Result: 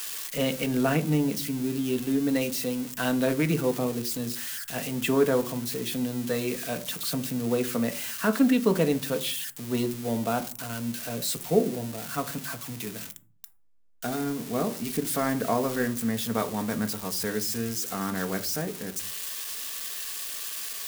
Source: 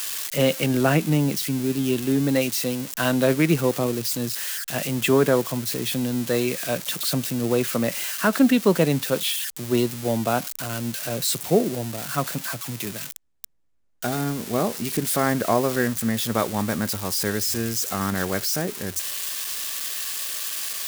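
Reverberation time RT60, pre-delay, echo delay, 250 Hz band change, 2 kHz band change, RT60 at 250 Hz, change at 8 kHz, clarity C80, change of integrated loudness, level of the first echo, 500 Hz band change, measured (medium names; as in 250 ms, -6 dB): 0.40 s, 4 ms, no echo, -3.5 dB, -5.5 dB, 0.65 s, -6.0 dB, 21.5 dB, -4.5 dB, no echo, -4.5 dB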